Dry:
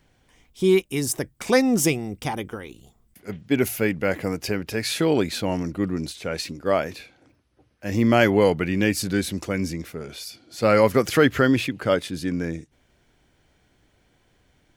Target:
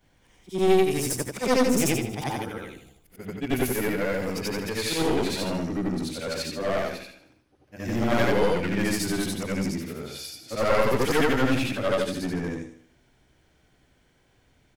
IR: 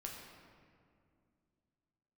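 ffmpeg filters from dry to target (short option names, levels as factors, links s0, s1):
-af "afftfilt=real='re':imag='-im':win_size=8192:overlap=0.75,aeval=exprs='clip(val(0),-1,0.0335)':c=same,aecho=1:1:77|154|231|308|385:0.282|0.127|0.0571|0.0257|0.0116,volume=1.5"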